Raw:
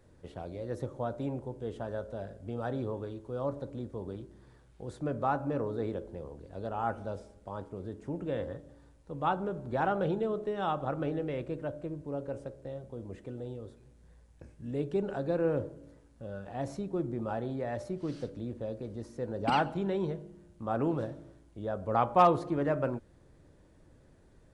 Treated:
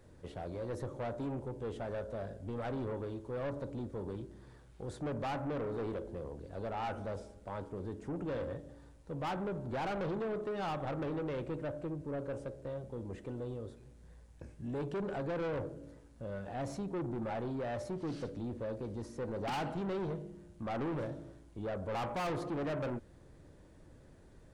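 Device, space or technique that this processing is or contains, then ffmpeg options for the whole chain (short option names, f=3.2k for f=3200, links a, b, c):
saturation between pre-emphasis and de-emphasis: -af "highshelf=f=4.4k:g=7.5,asoftclip=type=tanh:threshold=-35.5dB,highshelf=f=4.4k:g=-7.5,volume=2dB"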